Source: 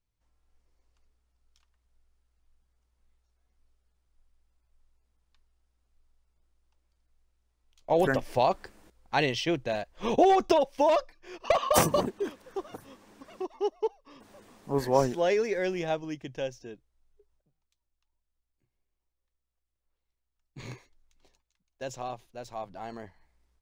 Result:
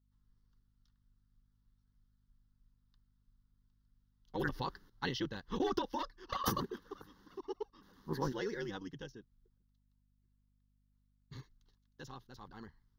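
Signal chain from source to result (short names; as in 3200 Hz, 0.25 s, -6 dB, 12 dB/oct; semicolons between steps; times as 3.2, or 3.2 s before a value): granular stretch 0.55×, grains 21 ms; fixed phaser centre 2400 Hz, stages 6; hum 50 Hz, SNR 31 dB; gain -4 dB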